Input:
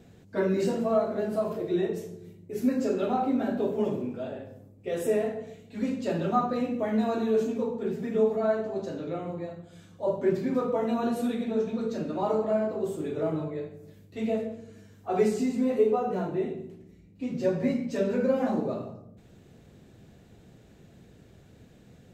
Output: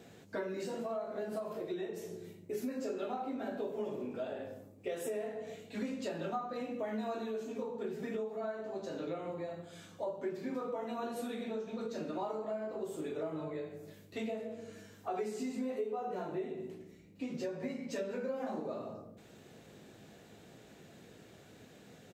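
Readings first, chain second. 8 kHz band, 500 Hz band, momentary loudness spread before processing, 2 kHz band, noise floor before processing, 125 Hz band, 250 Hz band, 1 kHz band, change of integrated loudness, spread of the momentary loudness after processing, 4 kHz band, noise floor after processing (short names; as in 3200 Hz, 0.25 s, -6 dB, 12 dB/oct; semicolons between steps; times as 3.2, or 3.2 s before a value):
n/a, -10.5 dB, 12 LU, -6.5 dB, -55 dBFS, -13.0 dB, -12.0 dB, -9.5 dB, -11.0 dB, 18 LU, -5.0 dB, -58 dBFS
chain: HPF 420 Hz 6 dB/oct; compressor 6:1, threshold -40 dBFS, peak gain reduction 18 dB; doubler 19 ms -10.5 dB; gain +3.5 dB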